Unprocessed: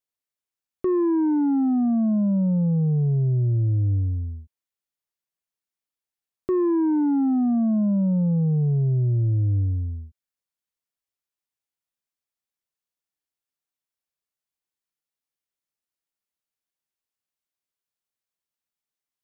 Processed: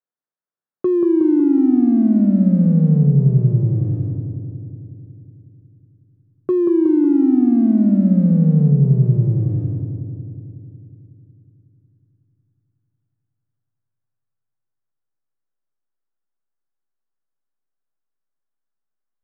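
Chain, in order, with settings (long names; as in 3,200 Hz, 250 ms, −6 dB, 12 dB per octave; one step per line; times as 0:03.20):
elliptic band-pass filter 130–1,600 Hz, stop band 40 dB
treble cut that deepens with the level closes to 500 Hz, closed at −20 dBFS
in parallel at −3.5 dB: slack as between gear wheels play −33.5 dBFS
on the sum: feedback echo with a low-pass in the loop 183 ms, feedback 72%, low-pass 1,200 Hz, level −4.5 dB
level +1.5 dB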